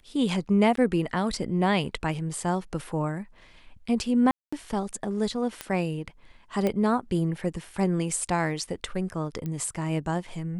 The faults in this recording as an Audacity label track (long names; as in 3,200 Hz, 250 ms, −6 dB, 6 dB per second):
0.760000	0.770000	drop-out 13 ms
4.310000	4.530000	drop-out 215 ms
5.610000	5.610000	click −15 dBFS
6.670000	6.670000	click −14 dBFS
9.460000	9.460000	click −21 dBFS